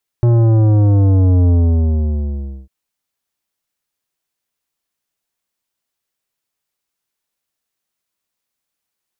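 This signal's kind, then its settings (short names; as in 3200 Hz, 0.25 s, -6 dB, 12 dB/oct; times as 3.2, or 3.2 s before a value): sub drop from 120 Hz, over 2.45 s, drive 12 dB, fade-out 1.19 s, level -9.5 dB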